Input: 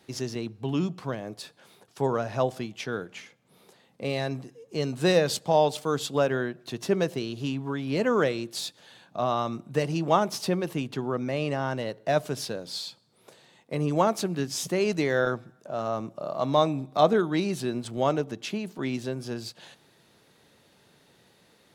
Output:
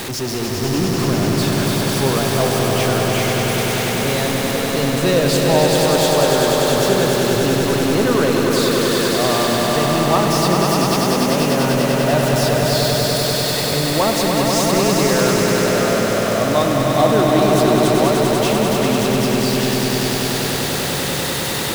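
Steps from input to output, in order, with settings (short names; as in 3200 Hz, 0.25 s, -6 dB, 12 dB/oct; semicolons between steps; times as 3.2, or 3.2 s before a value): zero-crossing step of -23 dBFS; swelling echo 98 ms, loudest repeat 5, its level -5 dB; gain +1.5 dB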